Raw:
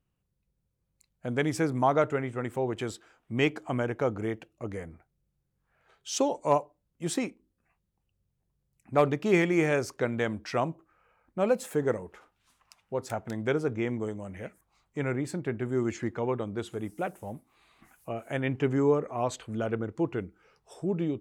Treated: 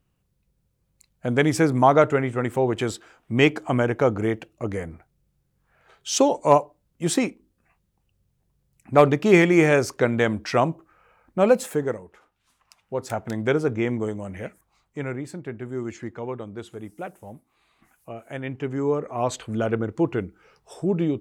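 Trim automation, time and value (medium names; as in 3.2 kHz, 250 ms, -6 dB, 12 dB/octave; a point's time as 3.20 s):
11.60 s +8 dB
12.05 s -3 dB
13.26 s +6 dB
14.45 s +6 dB
15.31 s -2 dB
18.70 s -2 dB
19.36 s +6.5 dB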